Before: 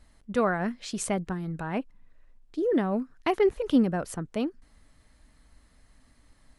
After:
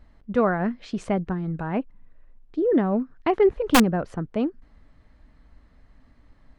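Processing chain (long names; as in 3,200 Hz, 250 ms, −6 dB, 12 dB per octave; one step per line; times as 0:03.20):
head-to-tape spacing loss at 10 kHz 27 dB
wrap-around overflow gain 15 dB
level +5.5 dB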